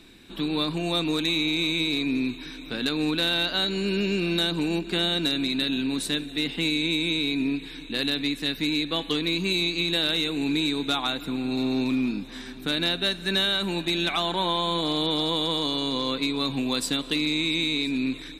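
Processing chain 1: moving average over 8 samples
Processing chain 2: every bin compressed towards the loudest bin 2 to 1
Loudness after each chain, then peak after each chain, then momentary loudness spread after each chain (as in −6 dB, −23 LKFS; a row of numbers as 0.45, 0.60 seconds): −28.0, −28.5 LKFS; −14.5, −12.0 dBFS; 4, 4 LU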